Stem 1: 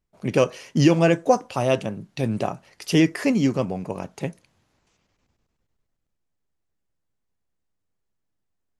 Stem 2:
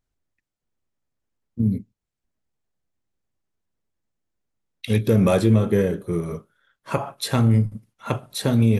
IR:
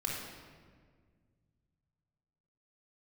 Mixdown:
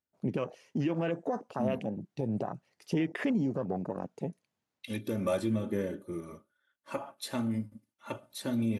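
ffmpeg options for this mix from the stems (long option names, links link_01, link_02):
-filter_complex "[0:a]afwtdn=0.0282,acompressor=threshold=-19dB:ratio=6,alimiter=limit=-19.5dB:level=0:latency=1:release=88,volume=-2dB[link_01];[1:a]aecho=1:1:3.4:0.65,volume=-13.5dB[link_02];[link_01][link_02]amix=inputs=2:normalize=0,highpass=120,aphaser=in_gain=1:out_gain=1:delay=4.7:decay=0.21:speed=0.34:type=sinusoidal"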